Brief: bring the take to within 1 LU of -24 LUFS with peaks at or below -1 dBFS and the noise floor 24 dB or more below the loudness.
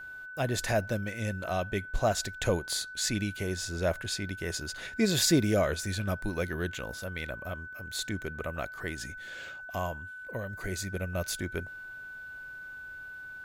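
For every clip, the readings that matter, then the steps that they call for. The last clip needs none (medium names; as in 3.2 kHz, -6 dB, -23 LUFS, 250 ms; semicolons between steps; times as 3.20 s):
steady tone 1.5 kHz; tone level -41 dBFS; loudness -32.0 LUFS; peak level -12.5 dBFS; loudness target -24.0 LUFS
-> band-stop 1.5 kHz, Q 30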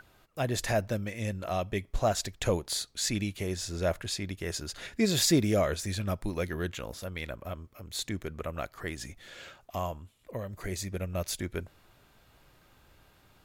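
steady tone not found; loudness -32.5 LUFS; peak level -12.5 dBFS; loudness target -24.0 LUFS
-> trim +8.5 dB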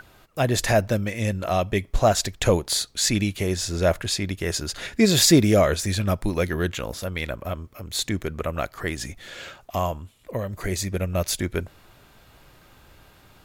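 loudness -24.0 LUFS; peak level -4.0 dBFS; noise floor -54 dBFS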